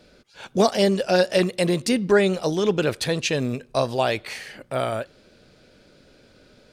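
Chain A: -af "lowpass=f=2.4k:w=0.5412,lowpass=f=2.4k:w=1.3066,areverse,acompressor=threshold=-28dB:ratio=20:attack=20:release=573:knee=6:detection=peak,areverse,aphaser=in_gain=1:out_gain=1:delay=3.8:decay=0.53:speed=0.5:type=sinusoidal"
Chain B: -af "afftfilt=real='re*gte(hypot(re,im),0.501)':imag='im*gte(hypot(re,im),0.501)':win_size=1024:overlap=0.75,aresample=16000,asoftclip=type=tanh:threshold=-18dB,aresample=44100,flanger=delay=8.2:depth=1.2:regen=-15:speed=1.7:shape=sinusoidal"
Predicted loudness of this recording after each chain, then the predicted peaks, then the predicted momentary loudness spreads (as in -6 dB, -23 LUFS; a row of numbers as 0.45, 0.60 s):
-32.0, -31.0 LUFS; -14.5, -18.5 dBFS; 21, 14 LU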